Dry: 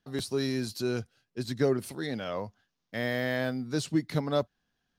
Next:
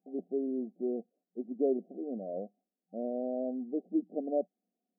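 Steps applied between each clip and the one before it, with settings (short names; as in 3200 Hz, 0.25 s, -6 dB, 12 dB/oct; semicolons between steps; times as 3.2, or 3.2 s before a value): FFT band-pass 180–770 Hz; gain -2.5 dB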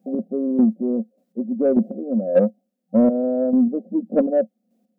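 chopper 1.7 Hz, depth 60%, duty 25%; small resonant body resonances 220/530 Hz, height 17 dB, ringing for 75 ms; in parallel at -3.5 dB: soft clip -25 dBFS, distortion -14 dB; on the sum: gain +8.5 dB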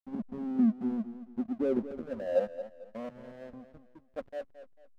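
band-pass sweep 200 Hz -> 1200 Hz, 1.13–2.87; backlash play -28.5 dBFS; warbling echo 0.223 s, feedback 33%, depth 85 cents, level -12.5 dB; gain -5.5 dB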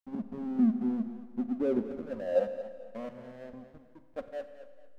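reverb RT60 1.7 s, pre-delay 32 ms, DRR 10.5 dB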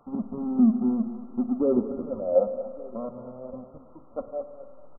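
added noise white -55 dBFS; brick-wall FIR low-pass 1400 Hz; echo 1.162 s -23 dB; gain +6 dB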